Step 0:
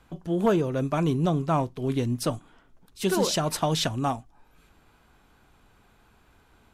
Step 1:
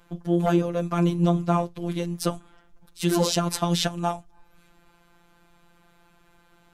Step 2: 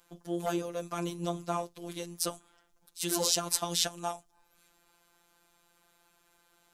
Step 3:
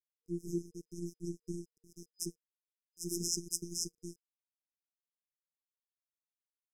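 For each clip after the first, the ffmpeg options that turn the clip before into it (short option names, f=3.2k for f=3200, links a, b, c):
-af "afftfilt=real='hypot(re,im)*cos(PI*b)':imag='0':win_size=1024:overlap=0.75,volume=4.5dB"
-af "bass=f=250:g=-11,treble=f=4k:g=11,volume=-8dB"
-af "aeval=exprs='sgn(val(0))*max(abs(val(0))-0.0211,0)':c=same,aemphasis=mode=reproduction:type=50kf,afftfilt=real='re*(1-between(b*sr/4096,470,5000))':imag='im*(1-between(b*sr/4096,470,5000))':win_size=4096:overlap=0.75,volume=3.5dB"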